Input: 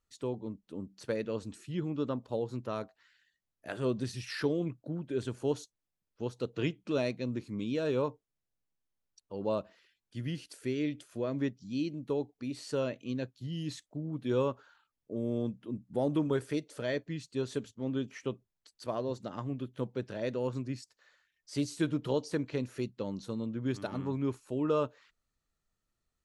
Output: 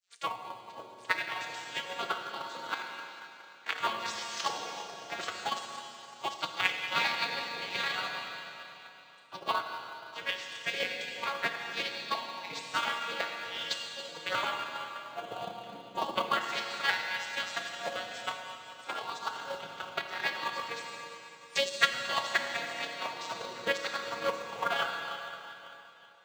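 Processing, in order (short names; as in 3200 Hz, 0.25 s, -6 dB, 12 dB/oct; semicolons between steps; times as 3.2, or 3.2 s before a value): arpeggiated vocoder major triad, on F#3, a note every 88 ms; spectral gate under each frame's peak -20 dB weak; tilt shelf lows -9.5 dB, about 790 Hz; Schroeder reverb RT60 3.2 s, combs from 25 ms, DRR -2.5 dB; in parallel at -3.5 dB: short-mantissa float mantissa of 2-bit; on the sum: transient shaper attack +11 dB, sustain -3 dB; gain +9 dB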